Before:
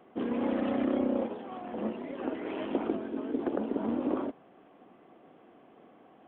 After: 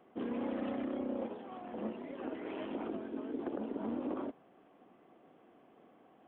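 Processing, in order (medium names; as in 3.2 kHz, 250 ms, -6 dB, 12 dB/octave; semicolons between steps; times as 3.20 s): peak limiter -22.5 dBFS, peak gain reduction 6 dB; trim -5.5 dB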